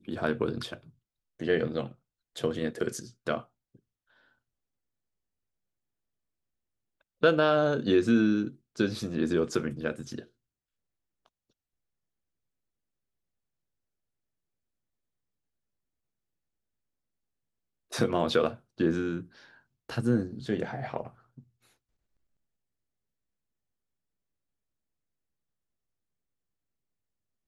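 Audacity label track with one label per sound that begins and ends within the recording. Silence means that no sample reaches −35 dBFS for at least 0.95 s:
7.230000	10.190000	sound
17.920000	21.070000	sound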